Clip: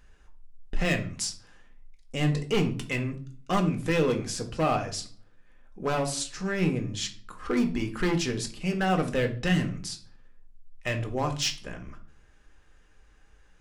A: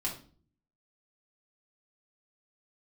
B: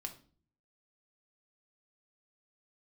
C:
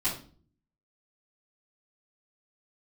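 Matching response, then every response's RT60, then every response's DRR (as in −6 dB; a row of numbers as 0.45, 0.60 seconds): B; 0.45, 0.45, 0.45 seconds; −4.5, 3.5, −13.5 decibels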